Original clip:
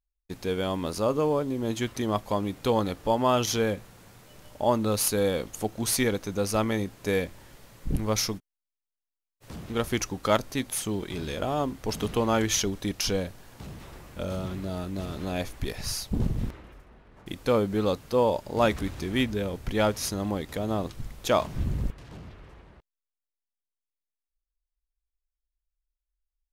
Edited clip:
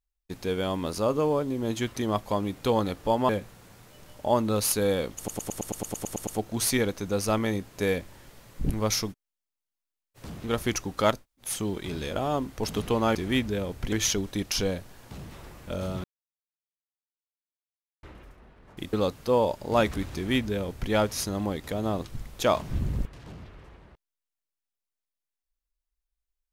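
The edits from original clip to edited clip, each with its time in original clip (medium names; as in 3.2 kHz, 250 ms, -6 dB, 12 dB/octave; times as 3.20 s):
3.29–3.65 s: delete
5.53 s: stutter 0.11 s, 11 plays
10.44–10.71 s: room tone, crossfade 0.16 s
14.53–16.52 s: mute
17.42–17.78 s: delete
18.99–19.76 s: copy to 12.41 s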